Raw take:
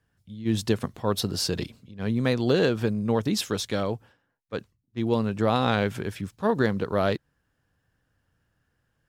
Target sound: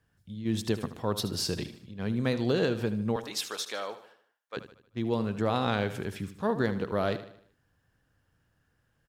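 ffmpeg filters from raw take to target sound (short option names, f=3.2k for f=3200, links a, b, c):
-filter_complex "[0:a]asettb=1/sr,asplit=3[a][b][c];[a]atrim=end=3.164[d];[b]atrim=start=3.16:end=4.57,asetpts=PTS-STARTPTS,afade=t=in:d=0.004:c=qsin,afade=t=out:st=1.406:d=0.004:c=qsin,highpass=690[e];[c]atrim=start=4.566[f];[d][e]acrossfade=d=0.004:c1=hsin:c2=qsin[g];[g][f]acrossfade=d=0.004:c1=qsin:c2=hsin,asplit=2[h][i];[i]acompressor=threshold=-36dB:ratio=6,volume=1.5dB[j];[h][j]amix=inputs=2:normalize=0,aecho=1:1:76|152|228|304|380:0.224|0.103|0.0474|0.0218|0.01,volume=-6.5dB"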